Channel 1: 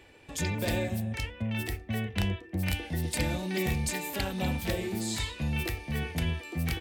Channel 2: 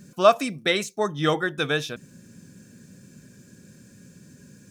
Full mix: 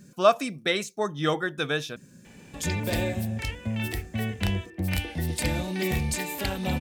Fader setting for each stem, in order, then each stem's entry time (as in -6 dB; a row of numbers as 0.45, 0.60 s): +2.5, -3.0 dB; 2.25, 0.00 s